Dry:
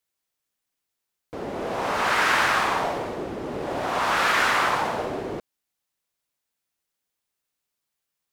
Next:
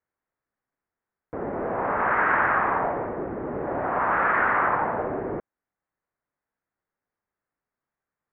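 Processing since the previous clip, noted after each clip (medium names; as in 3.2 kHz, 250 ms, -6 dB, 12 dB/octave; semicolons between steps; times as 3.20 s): steep low-pass 1.9 kHz 36 dB/octave; gain riding within 3 dB 2 s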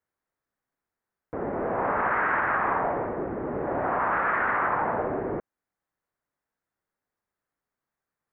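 peak limiter -16 dBFS, peak gain reduction 7 dB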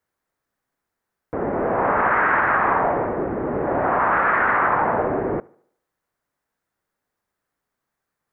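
tape echo 73 ms, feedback 48%, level -23.5 dB, low-pass 3 kHz; trim +6.5 dB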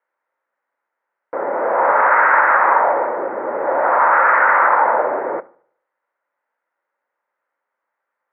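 cabinet simulation 470–2600 Hz, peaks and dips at 540 Hz +9 dB, 920 Hz +8 dB, 1.4 kHz +6 dB, 2 kHz +5 dB; on a send at -17 dB: reverberation RT60 0.30 s, pre-delay 3 ms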